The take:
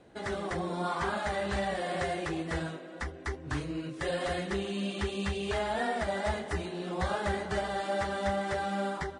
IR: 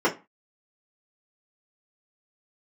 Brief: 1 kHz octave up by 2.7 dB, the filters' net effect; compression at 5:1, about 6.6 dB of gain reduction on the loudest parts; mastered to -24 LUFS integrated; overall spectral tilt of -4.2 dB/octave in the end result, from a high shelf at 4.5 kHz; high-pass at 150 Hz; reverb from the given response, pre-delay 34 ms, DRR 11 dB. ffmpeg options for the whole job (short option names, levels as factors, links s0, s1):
-filter_complex "[0:a]highpass=150,equalizer=f=1000:t=o:g=3.5,highshelf=f=4500:g=6,acompressor=threshold=0.0224:ratio=5,asplit=2[s0][s1];[1:a]atrim=start_sample=2205,adelay=34[s2];[s1][s2]afir=irnorm=-1:irlink=0,volume=0.0447[s3];[s0][s3]amix=inputs=2:normalize=0,volume=3.98"